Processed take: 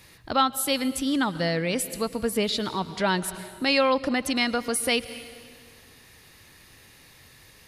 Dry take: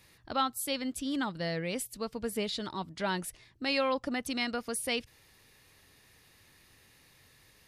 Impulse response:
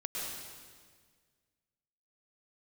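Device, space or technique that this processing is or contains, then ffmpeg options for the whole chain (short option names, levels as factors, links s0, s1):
ducked reverb: -filter_complex "[0:a]asplit=3[s0][s1][s2];[1:a]atrim=start_sample=2205[s3];[s1][s3]afir=irnorm=-1:irlink=0[s4];[s2]apad=whole_len=338597[s5];[s4][s5]sidechaincompress=threshold=0.0158:ratio=8:attack=37:release=269,volume=0.224[s6];[s0][s6]amix=inputs=2:normalize=0,volume=2.37"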